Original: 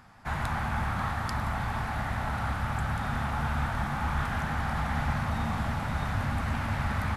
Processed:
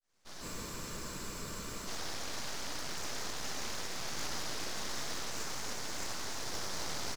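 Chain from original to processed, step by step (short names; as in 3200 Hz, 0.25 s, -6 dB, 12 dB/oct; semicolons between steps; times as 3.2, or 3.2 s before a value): opening faded in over 0.91 s; ladder band-pass 3600 Hz, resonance 50%; echo 0.279 s -8 dB; full-wave rectifier; spectral freeze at 0.44, 1.44 s; gain +18 dB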